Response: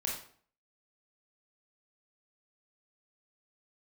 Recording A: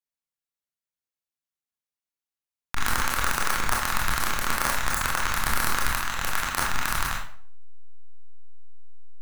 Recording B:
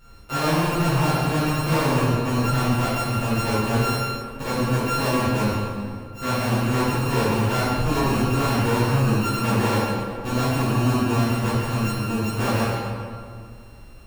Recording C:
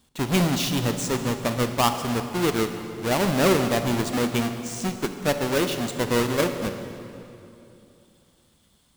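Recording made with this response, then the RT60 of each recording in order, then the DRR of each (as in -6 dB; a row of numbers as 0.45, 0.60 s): A; 0.50, 2.1, 2.9 s; -2.5, -11.5, 7.0 dB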